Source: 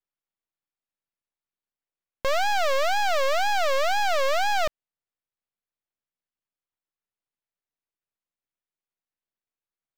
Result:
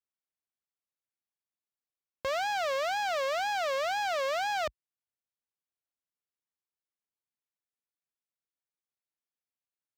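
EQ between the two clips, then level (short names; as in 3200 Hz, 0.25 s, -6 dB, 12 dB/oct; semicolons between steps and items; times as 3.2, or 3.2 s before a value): HPF 52 Hz 24 dB/oct; high shelf 10000 Hz -5 dB; -6.5 dB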